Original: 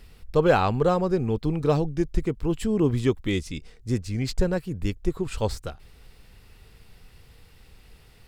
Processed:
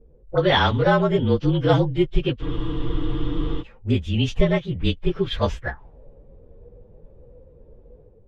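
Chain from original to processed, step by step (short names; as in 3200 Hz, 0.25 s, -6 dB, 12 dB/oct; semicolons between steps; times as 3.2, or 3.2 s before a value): inharmonic rescaling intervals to 112%; AGC gain up to 7 dB; spectral freeze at 2.44, 1.16 s; envelope low-pass 430–3200 Hz up, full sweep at -21 dBFS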